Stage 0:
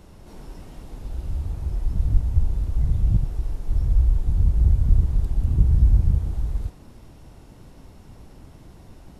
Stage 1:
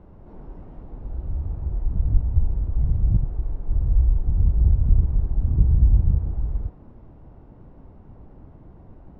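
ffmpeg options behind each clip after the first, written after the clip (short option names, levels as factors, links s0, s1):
-af "lowpass=1100"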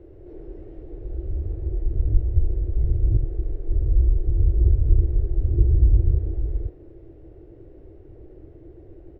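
-af "firequalizer=gain_entry='entry(110,0);entry(220,-18);entry(330,12);entry(950,-15);entry(1800,0)':delay=0.05:min_phase=1"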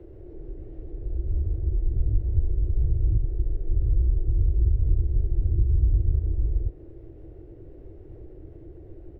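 -filter_complex "[0:a]acrossover=split=91|240[s0][s1][s2];[s0]acompressor=threshold=0.0891:ratio=4[s3];[s1]acompressor=threshold=0.0251:ratio=4[s4];[s2]acompressor=threshold=0.00316:ratio=4[s5];[s3][s4][s5]amix=inputs=3:normalize=0,volume=1.26"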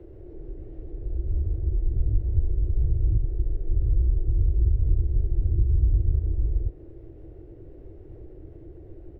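-af anull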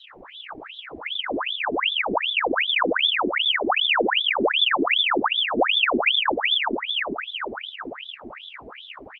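-af "asoftclip=type=hard:threshold=0.237,aecho=1:1:452|904|1356|1808|2260|2712|3164|3616:0.631|0.366|0.212|0.123|0.0714|0.0414|0.024|0.0139,aeval=exprs='val(0)*sin(2*PI*1900*n/s+1900*0.85/2.6*sin(2*PI*2.6*n/s))':c=same"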